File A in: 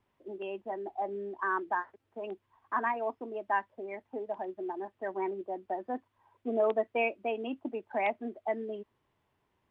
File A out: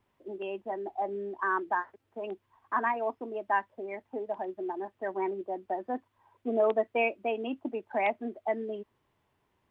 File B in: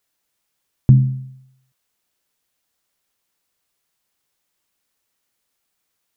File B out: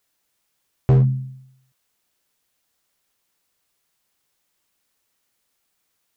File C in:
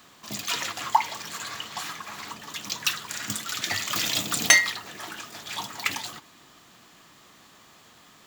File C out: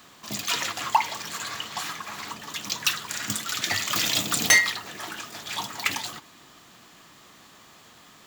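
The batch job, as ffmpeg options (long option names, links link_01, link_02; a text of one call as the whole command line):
ffmpeg -i in.wav -af "asoftclip=type=hard:threshold=-13.5dB,volume=2dB" out.wav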